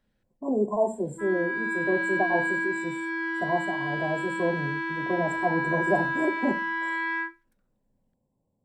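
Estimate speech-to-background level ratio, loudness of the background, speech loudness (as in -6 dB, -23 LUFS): -0.5 dB, -29.0 LUFS, -29.5 LUFS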